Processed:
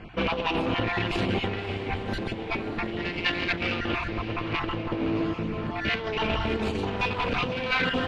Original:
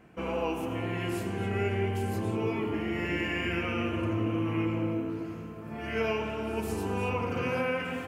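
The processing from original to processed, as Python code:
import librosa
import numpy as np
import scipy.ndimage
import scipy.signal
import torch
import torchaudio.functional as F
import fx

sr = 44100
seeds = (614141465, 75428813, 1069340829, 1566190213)

p1 = fx.spec_dropout(x, sr, seeds[0], share_pct=27)
p2 = fx.dmg_wind(p1, sr, seeds[1], corner_hz=92.0, level_db=-47.0)
p3 = fx.peak_eq(p2, sr, hz=260.0, db=3.0, octaves=2.5, at=(1.97, 3.64))
p4 = fx.clip_asym(p3, sr, top_db=-37.0, bottom_db=-22.5)
p5 = fx.over_compress(p4, sr, threshold_db=-36.0, ratio=-0.5)
p6 = fx.lowpass_res(p5, sr, hz=3800.0, q=2.4)
p7 = p6 + fx.echo_diffused(p6, sr, ms=579, feedback_pct=57, wet_db=-12.5, dry=0)
y = F.gain(torch.from_numpy(p7), 8.0).numpy()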